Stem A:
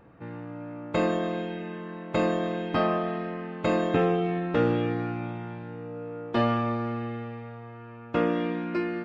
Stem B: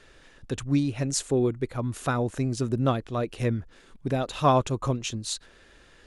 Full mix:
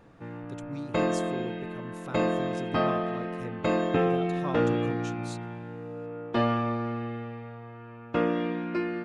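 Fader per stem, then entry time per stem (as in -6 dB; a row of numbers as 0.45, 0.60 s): -1.0, -14.5 dB; 0.00, 0.00 s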